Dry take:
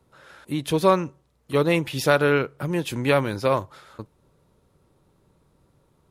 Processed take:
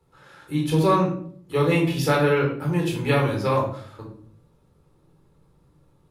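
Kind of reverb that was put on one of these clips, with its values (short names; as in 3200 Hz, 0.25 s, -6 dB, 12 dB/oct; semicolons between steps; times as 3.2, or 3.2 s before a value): shoebox room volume 740 m³, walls furnished, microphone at 4.1 m; gain -6 dB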